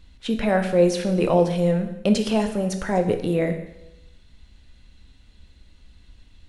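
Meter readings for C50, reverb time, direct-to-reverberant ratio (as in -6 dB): 9.5 dB, 0.90 s, 6.0 dB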